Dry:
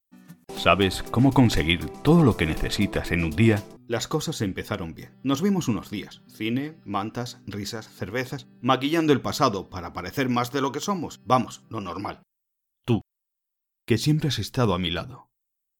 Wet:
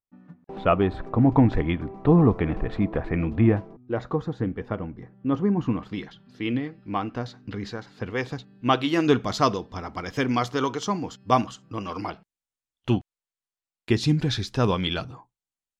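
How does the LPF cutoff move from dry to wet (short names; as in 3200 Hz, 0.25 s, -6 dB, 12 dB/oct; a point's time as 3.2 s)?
5.52 s 1300 Hz
5.98 s 3100 Hz
7.72 s 3100 Hz
8.82 s 6300 Hz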